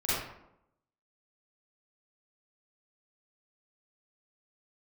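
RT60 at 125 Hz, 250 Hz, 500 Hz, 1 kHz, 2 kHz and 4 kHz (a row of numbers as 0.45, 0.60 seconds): 0.80, 0.90, 0.85, 0.80, 0.60, 0.45 seconds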